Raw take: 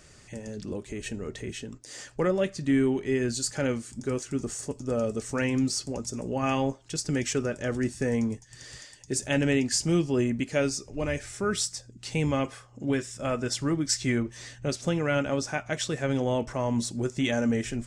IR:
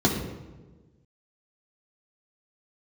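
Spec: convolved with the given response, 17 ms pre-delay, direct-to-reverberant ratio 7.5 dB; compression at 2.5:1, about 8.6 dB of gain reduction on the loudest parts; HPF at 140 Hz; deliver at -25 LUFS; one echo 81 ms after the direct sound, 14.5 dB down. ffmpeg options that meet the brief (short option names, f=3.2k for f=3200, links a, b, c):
-filter_complex "[0:a]highpass=140,acompressor=threshold=-34dB:ratio=2.5,aecho=1:1:81:0.188,asplit=2[a][b];[1:a]atrim=start_sample=2205,adelay=17[c];[b][c]afir=irnorm=-1:irlink=0,volume=-22.5dB[d];[a][d]amix=inputs=2:normalize=0,volume=7dB"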